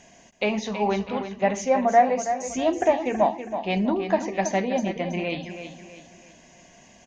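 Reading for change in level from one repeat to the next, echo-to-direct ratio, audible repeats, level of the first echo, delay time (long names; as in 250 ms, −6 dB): −8.0 dB, −9.0 dB, 4, −9.5 dB, 325 ms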